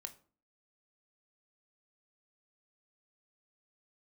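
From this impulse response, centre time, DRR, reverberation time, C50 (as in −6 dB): 6 ms, 8.0 dB, 0.45 s, 15.5 dB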